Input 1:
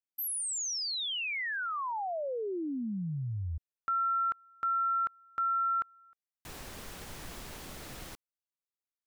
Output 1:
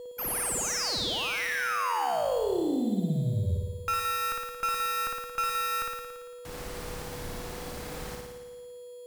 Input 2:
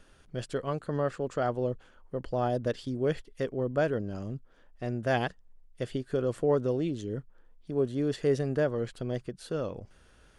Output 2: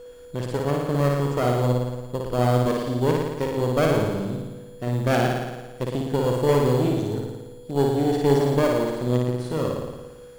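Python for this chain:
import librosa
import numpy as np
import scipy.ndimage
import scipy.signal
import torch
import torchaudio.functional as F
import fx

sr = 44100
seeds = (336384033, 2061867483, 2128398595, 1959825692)

p1 = x + 10.0 ** (-43.0 / 20.0) * np.sin(2.0 * np.pi * 490.0 * np.arange(len(x)) / sr)
p2 = fx.sample_hold(p1, sr, seeds[0], rate_hz=3800.0, jitter_pct=0)
p3 = p1 + (p2 * 10.0 ** (-5.0 / 20.0))
p4 = fx.cheby_harmonics(p3, sr, harmonics=(4,), levels_db=(-13,), full_scale_db=-11.5)
y = fx.room_flutter(p4, sr, wall_m=9.7, rt60_s=1.2)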